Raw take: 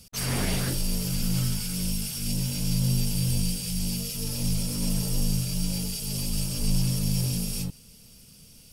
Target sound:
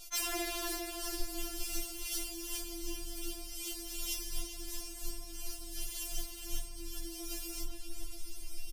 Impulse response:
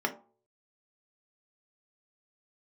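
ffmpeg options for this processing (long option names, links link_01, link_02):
-filter_complex "[0:a]asubboost=boost=4:cutoff=77,acompressor=threshold=-29dB:ratio=8,volume=29dB,asoftclip=hard,volume=-29dB,asplit=2[link_01][link_02];[link_02]adelay=404,lowpass=frequency=1900:poles=1,volume=-4dB,asplit=2[link_03][link_04];[link_04]adelay=404,lowpass=frequency=1900:poles=1,volume=0.51,asplit=2[link_05][link_06];[link_06]adelay=404,lowpass=frequency=1900:poles=1,volume=0.51,asplit=2[link_07][link_08];[link_08]adelay=404,lowpass=frequency=1900:poles=1,volume=0.51,asplit=2[link_09][link_10];[link_10]adelay=404,lowpass=frequency=1900:poles=1,volume=0.51,asplit=2[link_11][link_12];[link_12]adelay=404,lowpass=frequency=1900:poles=1,volume=0.51,asplit=2[link_13][link_14];[link_14]adelay=404,lowpass=frequency=1900:poles=1,volume=0.51[link_15];[link_03][link_05][link_07][link_09][link_11][link_13][link_15]amix=inputs=7:normalize=0[link_16];[link_01][link_16]amix=inputs=2:normalize=0,afftfilt=real='re*4*eq(mod(b,16),0)':imag='im*4*eq(mod(b,16),0)':win_size=2048:overlap=0.75,volume=5dB"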